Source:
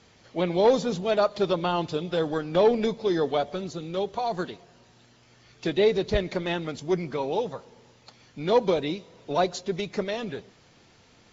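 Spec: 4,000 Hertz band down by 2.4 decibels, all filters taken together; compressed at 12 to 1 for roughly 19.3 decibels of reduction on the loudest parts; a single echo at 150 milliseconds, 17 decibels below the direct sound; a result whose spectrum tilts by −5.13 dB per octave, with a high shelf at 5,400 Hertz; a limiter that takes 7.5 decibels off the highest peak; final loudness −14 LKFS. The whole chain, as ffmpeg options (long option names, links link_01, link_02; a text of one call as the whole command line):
ffmpeg -i in.wav -af "equalizer=frequency=4000:width_type=o:gain=-5,highshelf=frequency=5400:gain=6,acompressor=threshold=-35dB:ratio=12,alimiter=level_in=7.5dB:limit=-24dB:level=0:latency=1,volume=-7.5dB,aecho=1:1:150:0.141,volume=28dB" out.wav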